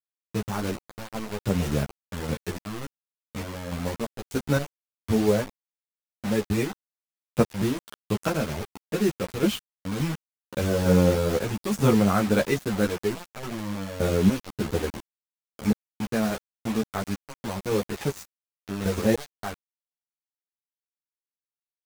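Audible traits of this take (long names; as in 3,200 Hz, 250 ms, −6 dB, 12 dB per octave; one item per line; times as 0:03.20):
sample-and-hold tremolo 3.5 Hz, depth 95%
a quantiser's noise floor 6 bits, dither none
a shimmering, thickened sound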